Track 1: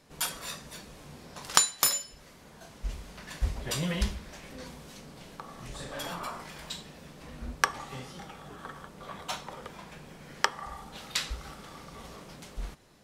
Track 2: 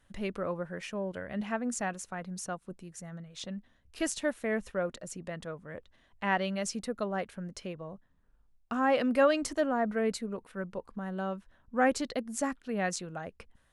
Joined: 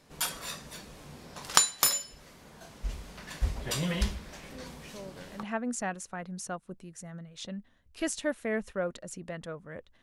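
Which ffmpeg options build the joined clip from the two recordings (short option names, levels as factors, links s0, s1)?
-filter_complex "[1:a]asplit=2[s0][s1];[0:a]apad=whole_dur=10.02,atrim=end=10.02,atrim=end=5.432[s2];[s1]atrim=start=1.418:end=6.01[s3];[s0]atrim=start=0.79:end=1.42,asetpts=PTS-STARTPTS,volume=0.335,afade=t=in:d=0.004:c=hsin,afade=t=out:st=0.626:d=0.004:c=hsin,adelay=4800[s4];[s2][s3]acrossfade=d=0.004:c1=hsin:c2=hsin[s5];[s5][s4]amix=inputs=2:normalize=0"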